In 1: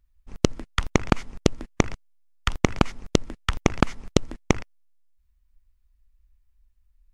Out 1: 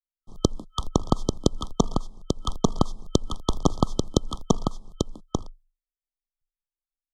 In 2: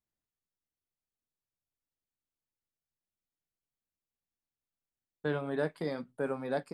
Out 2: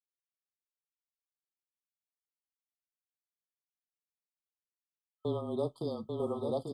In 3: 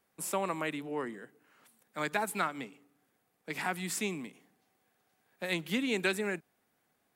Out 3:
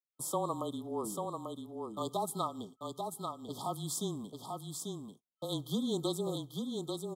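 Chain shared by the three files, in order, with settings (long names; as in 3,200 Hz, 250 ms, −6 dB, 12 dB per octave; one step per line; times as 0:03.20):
noise gate −48 dBFS, range −38 dB
frequency shifter −25 Hz
brick-wall band-stop 1,300–3,100 Hz
single-tap delay 841 ms −4.5 dB
level −1 dB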